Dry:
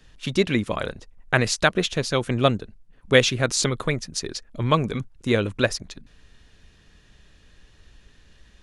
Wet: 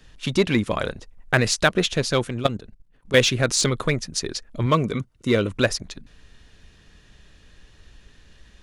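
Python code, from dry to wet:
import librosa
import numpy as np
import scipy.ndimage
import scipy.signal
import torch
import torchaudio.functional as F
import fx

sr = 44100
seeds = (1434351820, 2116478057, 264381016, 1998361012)

p1 = 10.0 ** (-16.5 / 20.0) * (np.abs((x / 10.0 ** (-16.5 / 20.0) + 3.0) % 4.0 - 2.0) - 1.0)
p2 = x + (p1 * librosa.db_to_amplitude(-10.0))
p3 = fx.level_steps(p2, sr, step_db=14, at=(2.27, 3.17))
y = fx.notch_comb(p3, sr, f0_hz=830.0, at=(4.66, 5.51))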